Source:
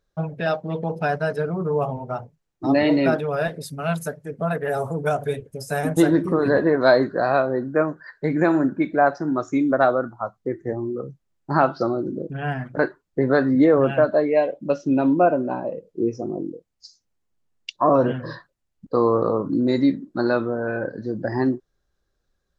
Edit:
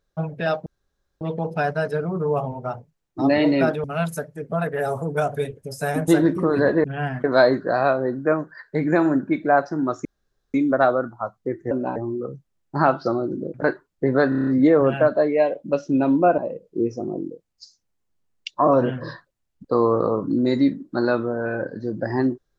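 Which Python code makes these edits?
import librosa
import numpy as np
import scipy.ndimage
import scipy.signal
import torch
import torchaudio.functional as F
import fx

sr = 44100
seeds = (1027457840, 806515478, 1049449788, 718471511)

y = fx.edit(x, sr, fx.insert_room_tone(at_s=0.66, length_s=0.55),
    fx.cut(start_s=3.29, length_s=0.44),
    fx.insert_room_tone(at_s=9.54, length_s=0.49),
    fx.move(start_s=12.29, length_s=0.4, to_s=6.73),
    fx.stutter(start_s=13.44, slice_s=0.03, count=7),
    fx.move(start_s=15.35, length_s=0.25, to_s=10.71), tone=tone)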